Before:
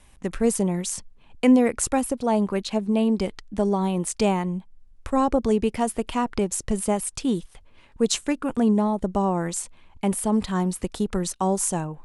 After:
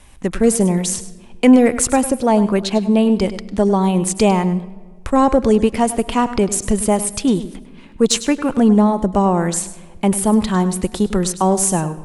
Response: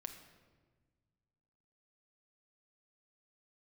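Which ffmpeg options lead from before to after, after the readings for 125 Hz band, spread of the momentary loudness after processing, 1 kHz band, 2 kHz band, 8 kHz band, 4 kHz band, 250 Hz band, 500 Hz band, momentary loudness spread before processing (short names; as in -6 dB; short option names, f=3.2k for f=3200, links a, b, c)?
+8.0 dB, 8 LU, +7.5 dB, +7.5 dB, +8.0 dB, +8.0 dB, +7.5 dB, +7.5 dB, 7 LU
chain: -filter_complex "[0:a]asoftclip=type=tanh:threshold=-8.5dB,asplit=2[a][b];[1:a]atrim=start_sample=2205,adelay=101[c];[b][c]afir=irnorm=-1:irlink=0,volume=-9.5dB[d];[a][d]amix=inputs=2:normalize=0,volume=8dB"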